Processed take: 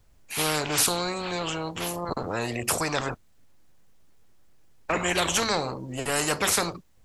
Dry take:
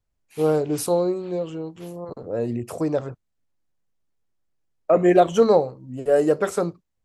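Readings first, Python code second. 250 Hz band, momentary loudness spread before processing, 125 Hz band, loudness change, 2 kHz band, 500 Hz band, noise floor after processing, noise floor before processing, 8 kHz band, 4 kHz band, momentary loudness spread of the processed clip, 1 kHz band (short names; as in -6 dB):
-8.0 dB, 19 LU, -3.5 dB, -4.5 dB, +8.0 dB, -11.0 dB, -57 dBFS, -75 dBFS, +11.5 dB, +13.0 dB, 10 LU, -2.5 dB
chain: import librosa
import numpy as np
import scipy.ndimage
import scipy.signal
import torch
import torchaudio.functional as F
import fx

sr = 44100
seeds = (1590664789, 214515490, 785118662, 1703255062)

y = fx.spectral_comp(x, sr, ratio=4.0)
y = F.gain(torch.from_numpy(y), -5.5).numpy()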